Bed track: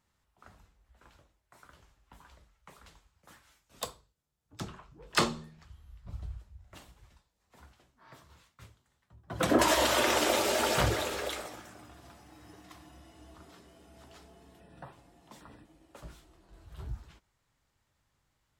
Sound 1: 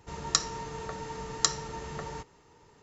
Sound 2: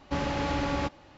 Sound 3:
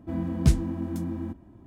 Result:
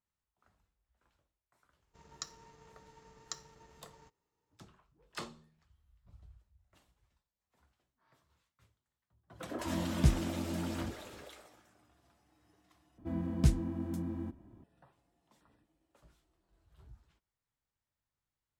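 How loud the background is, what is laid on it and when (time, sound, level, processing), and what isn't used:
bed track -16.5 dB
1.87 add 1 -17.5 dB + G.711 law mismatch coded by A
9.58 add 3 -6.5 dB
12.98 replace with 3 -6.5 dB
not used: 2

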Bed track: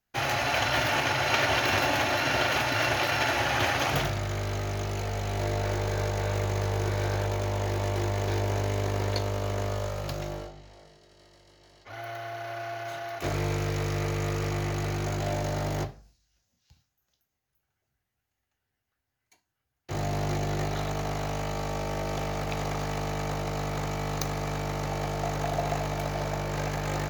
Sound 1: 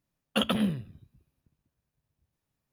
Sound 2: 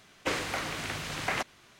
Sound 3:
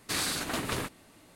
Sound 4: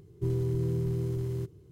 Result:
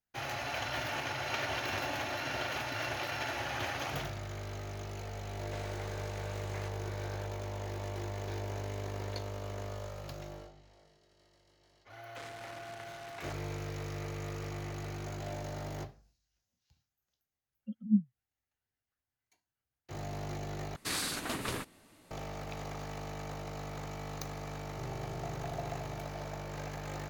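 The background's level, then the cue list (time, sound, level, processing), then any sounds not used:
bed track -10.5 dB
5.26 add 2 -18 dB
11.9 add 2 -13 dB + core saturation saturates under 2500 Hz
17.31 add 1 -4.5 dB + spectral expander 4:1
20.76 replace with 3 -4 dB
24.56 add 4 -16 dB

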